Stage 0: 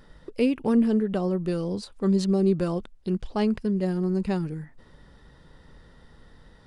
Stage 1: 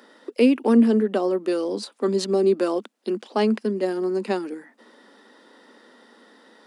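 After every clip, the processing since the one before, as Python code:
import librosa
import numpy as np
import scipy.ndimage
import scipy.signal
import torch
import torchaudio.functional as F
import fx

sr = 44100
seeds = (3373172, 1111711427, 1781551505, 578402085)

y = scipy.signal.sosfilt(scipy.signal.butter(12, 220.0, 'highpass', fs=sr, output='sos'), x)
y = y * librosa.db_to_amplitude(6.0)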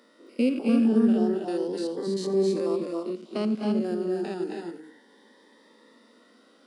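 y = fx.spec_steps(x, sr, hold_ms=100)
y = fx.echo_multitap(y, sr, ms=(88, 228, 252, 270, 343), db=(-16.5, -18.5, -8.5, -4.0, -14.0))
y = fx.notch_cascade(y, sr, direction='rising', hz=0.33)
y = y * librosa.db_to_amplitude(-4.0)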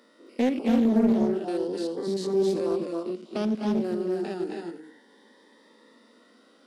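y = fx.doppler_dist(x, sr, depth_ms=0.48)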